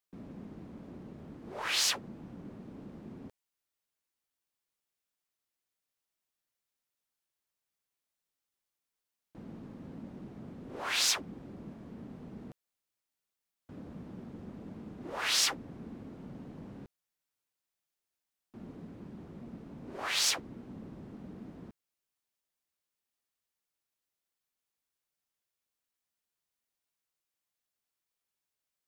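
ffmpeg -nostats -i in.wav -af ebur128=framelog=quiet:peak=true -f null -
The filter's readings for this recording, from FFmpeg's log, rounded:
Integrated loudness:
  I:         -31.7 LUFS
  Threshold: -46.6 LUFS
Loudness range:
  LRA:        17.7 LU
  Threshold: -58.2 LUFS
  LRA low:   -53.1 LUFS
  LRA high:  -35.4 LUFS
True peak:
  Peak:      -15.1 dBFS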